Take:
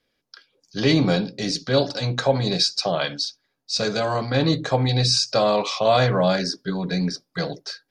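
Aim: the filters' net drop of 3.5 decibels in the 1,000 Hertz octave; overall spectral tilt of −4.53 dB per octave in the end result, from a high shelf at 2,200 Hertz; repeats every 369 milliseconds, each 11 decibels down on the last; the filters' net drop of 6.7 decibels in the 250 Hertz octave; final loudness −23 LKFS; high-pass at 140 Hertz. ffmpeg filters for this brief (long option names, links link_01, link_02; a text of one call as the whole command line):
ffmpeg -i in.wav -af "highpass=140,equalizer=frequency=250:width_type=o:gain=-8.5,equalizer=frequency=1000:width_type=o:gain=-3.5,highshelf=frequency=2200:gain=-5,aecho=1:1:369|738|1107:0.282|0.0789|0.0221,volume=2.5dB" out.wav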